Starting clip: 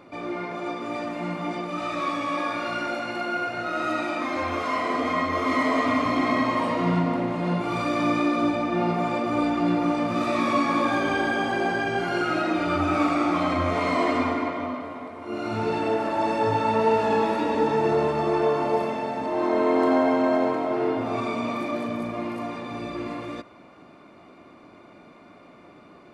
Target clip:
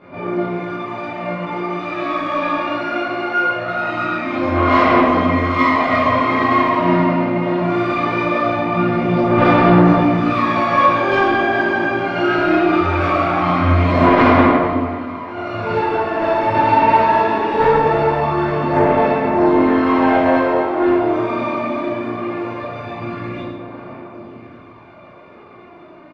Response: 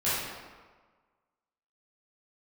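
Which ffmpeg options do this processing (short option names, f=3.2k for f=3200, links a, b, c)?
-filter_complex "[0:a]lowpass=3.4k,aecho=1:1:1142|2284|3426|4568|5710:0.119|0.0642|0.0347|0.0187|0.0101,aphaser=in_gain=1:out_gain=1:delay=3.3:decay=0.53:speed=0.21:type=sinusoidal,aeval=exprs='0.531*(cos(1*acos(clip(val(0)/0.531,-1,1)))-cos(1*PI/2))+0.119*(cos(3*acos(clip(val(0)/0.531,-1,1)))-cos(3*PI/2))':c=same[a];[1:a]atrim=start_sample=2205[b];[a][b]afir=irnorm=-1:irlink=0,alimiter=level_in=5dB:limit=-1dB:release=50:level=0:latency=1,volume=-1dB"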